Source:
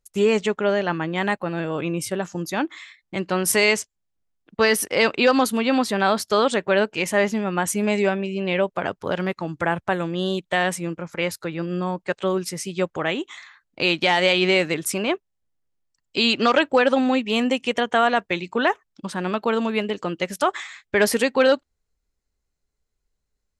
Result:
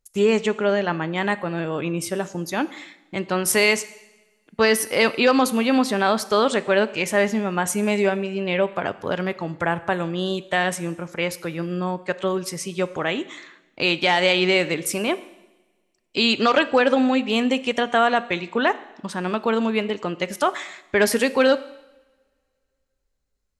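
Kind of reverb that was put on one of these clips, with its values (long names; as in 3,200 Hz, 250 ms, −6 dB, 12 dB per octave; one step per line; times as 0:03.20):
coupled-rooms reverb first 0.94 s, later 2.6 s, from −25 dB, DRR 14 dB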